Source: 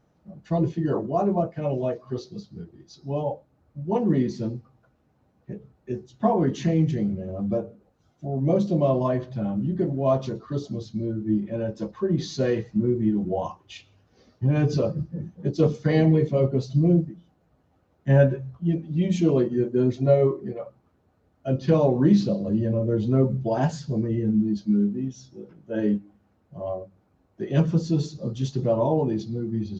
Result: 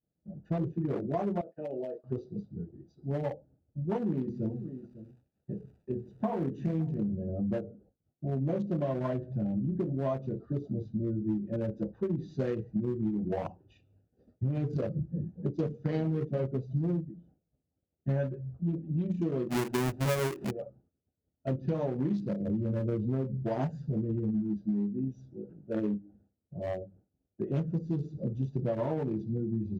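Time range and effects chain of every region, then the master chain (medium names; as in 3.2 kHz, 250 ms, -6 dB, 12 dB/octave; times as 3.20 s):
1.41–2.04 s: high-pass 410 Hz + expander -41 dBFS + compression 16:1, threshold -28 dBFS
4.16–6.99 s: hum notches 60/120/180/240/300/360/420/480 Hz + crackle 380 per s -44 dBFS + delay 552 ms -18.5 dB
19.49–20.51 s: square wave that keeps the level + dynamic bell 4.1 kHz, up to -4 dB, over -33 dBFS, Q 1.3
whole clip: local Wiener filter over 41 samples; expander -54 dBFS; compression 6:1, threshold -28 dBFS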